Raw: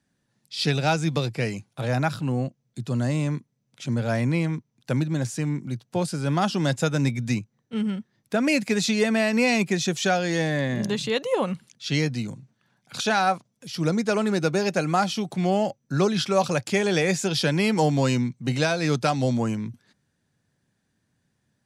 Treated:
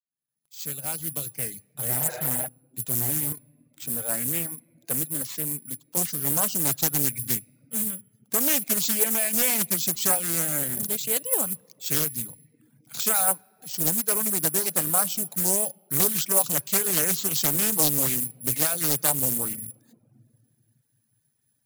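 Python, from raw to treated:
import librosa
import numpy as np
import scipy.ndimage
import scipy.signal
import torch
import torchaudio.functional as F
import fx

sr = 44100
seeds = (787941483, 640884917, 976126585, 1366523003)

y = fx.fade_in_head(x, sr, length_s=2.22)
y = fx.highpass(y, sr, hz=180.0, slope=12, at=(3.32, 5.97))
y = (np.kron(y[::4], np.eye(4)[0]) * 4)[:len(y)]
y = fx.high_shelf(y, sr, hz=3200.0, db=5.0)
y = fx.room_shoebox(y, sr, seeds[0], volume_m3=3100.0, walls='mixed', distance_m=0.38)
y = fx.spec_repair(y, sr, seeds[1], start_s=1.98, length_s=0.46, low_hz=260.0, high_hz=3800.0, source='before')
y = fx.dereverb_blind(y, sr, rt60_s=0.73)
y = fx.doppler_dist(y, sr, depth_ms=0.72)
y = y * librosa.db_to_amplitude(-8.0)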